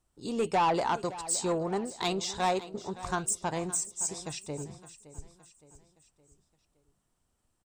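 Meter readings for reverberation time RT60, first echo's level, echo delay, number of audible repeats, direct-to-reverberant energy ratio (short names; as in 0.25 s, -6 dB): none, -16.0 dB, 0.566 s, 3, none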